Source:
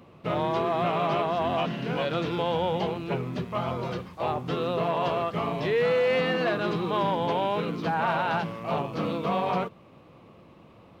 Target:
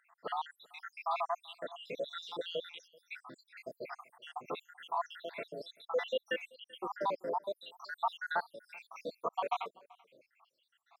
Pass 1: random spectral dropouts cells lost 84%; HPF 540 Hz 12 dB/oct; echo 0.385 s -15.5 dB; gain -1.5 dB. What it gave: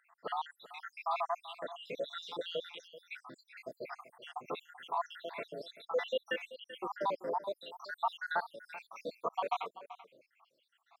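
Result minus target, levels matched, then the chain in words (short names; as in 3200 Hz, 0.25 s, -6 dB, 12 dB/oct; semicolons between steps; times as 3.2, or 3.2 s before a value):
echo-to-direct +9.5 dB
random spectral dropouts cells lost 84%; HPF 540 Hz 12 dB/oct; echo 0.385 s -25 dB; gain -1.5 dB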